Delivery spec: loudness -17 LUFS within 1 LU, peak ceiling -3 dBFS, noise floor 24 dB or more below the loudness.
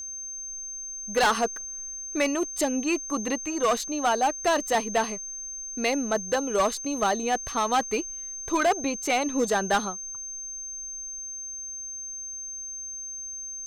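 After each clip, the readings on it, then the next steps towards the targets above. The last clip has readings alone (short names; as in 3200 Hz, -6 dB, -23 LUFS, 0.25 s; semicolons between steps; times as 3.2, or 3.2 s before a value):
clipped 1.2%; flat tops at -17.5 dBFS; steady tone 6300 Hz; tone level -34 dBFS; loudness -27.5 LUFS; peak -17.5 dBFS; loudness target -17.0 LUFS
-> clip repair -17.5 dBFS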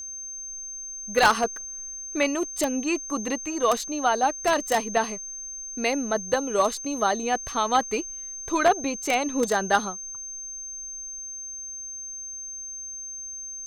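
clipped 0.0%; steady tone 6300 Hz; tone level -34 dBFS
-> notch 6300 Hz, Q 30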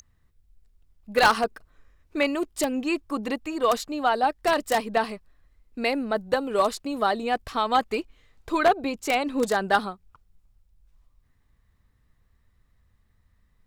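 steady tone none; loudness -25.5 LUFS; peak -8.0 dBFS; loudness target -17.0 LUFS
-> gain +8.5 dB; limiter -3 dBFS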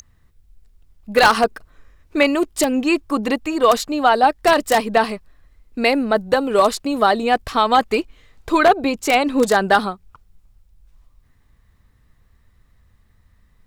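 loudness -17.5 LUFS; peak -3.0 dBFS; noise floor -57 dBFS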